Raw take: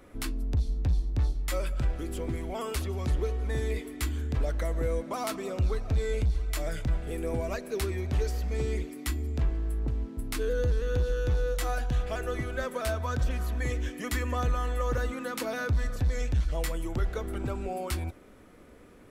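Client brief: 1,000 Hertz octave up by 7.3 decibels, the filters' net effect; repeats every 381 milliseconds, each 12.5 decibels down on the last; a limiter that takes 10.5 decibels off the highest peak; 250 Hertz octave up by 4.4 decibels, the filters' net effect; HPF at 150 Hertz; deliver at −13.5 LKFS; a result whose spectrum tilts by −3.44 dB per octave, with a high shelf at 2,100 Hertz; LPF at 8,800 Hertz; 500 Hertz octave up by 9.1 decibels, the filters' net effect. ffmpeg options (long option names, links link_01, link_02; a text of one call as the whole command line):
ffmpeg -i in.wav -af "highpass=150,lowpass=8800,equalizer=frequency=250:width_type=o:gain=3,equalizer=frequency=500:width_type=o:gain=8,equalizer=frequency=1000:width_type=o:gain=9,highshelf=frequency=2100:gain=-8,alimiter=limit=-23dB:level=0:latency=1,aecho=1:1:381|762|1143:0.237|0.0569|0.0137,volume=18.5dB" out.wav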